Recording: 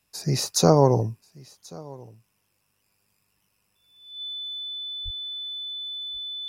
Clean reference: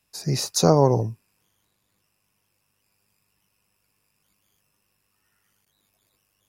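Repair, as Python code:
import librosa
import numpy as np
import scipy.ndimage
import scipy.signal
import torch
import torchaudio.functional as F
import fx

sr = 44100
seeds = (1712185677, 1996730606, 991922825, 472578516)

y = fx.notch(x, sr, hz=3500.0, q=30.0)
y = fx.fix_deplosive(y, sr, at_s=(5.04,))
y = fx.fix_echo_inverse(y, sr, delay_ms=1084, level_db=-23.0)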